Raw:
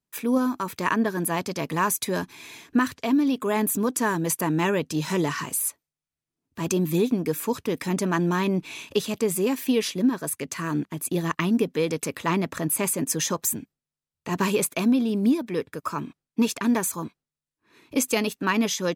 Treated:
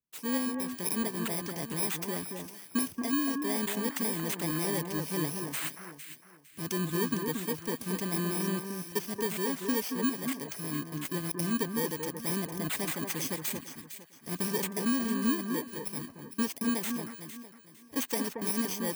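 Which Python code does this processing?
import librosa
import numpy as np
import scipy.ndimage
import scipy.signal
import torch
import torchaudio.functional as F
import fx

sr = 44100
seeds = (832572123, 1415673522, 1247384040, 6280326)

y = fx.bit_reversed(x, sr, seeds[0], block=32)
y = fx.echo_alternate(y, sr, ms=228, hz=1700.0, feedback_pct=52, wet_db=-5)
y = y * 10.0 ** (-8.5 / 20.0)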